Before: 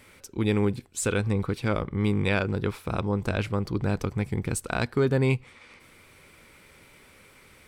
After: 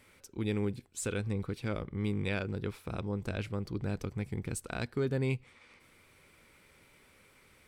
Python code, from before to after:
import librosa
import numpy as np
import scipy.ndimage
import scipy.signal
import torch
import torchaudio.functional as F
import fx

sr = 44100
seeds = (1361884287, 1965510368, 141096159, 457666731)

y = fx.dynamic_eq(x, sr, hz=1000.0, q=1.3, threshold_db=-42.0, ratio=4.0, max_db=-5)
y = y * 10.0 ** (-8.0 / 20.0)